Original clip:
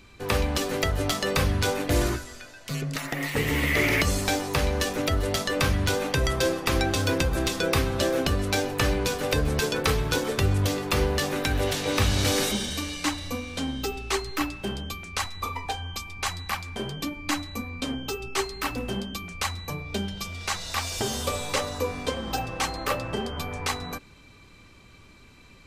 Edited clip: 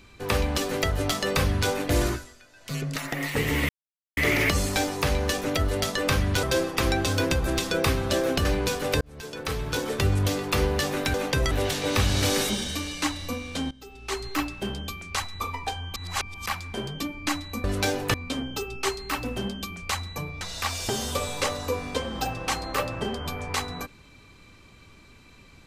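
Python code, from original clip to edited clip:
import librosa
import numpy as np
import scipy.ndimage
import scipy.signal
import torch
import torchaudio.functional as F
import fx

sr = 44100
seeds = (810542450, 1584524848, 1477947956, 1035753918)

y = fx.edit(x, sr, fx.fade_down_up(start_s=2.09, length_s=0.67, db=-10.0, fade_s=0.26),
    fx.insert_silence(at_s=3.69, length_s=0.48),
    fx.move(start_s=5.95, length_s=0.37, to_s=11.53),
    fx.move(start_s=8.34, length_s=0.5, to_s=17.66),
    fx.fade_in_span(start_s=9.4, length_s=1.03),
    fx.fade_in_from(start_s=13.73, length_s=0.54, curve='qua', floor_db=-19.0),
    fx.reverse_span(start_s=15.98, length_s=0.5),
    fx.cut(start_s=19.93, length_s=0.6), tone=tone)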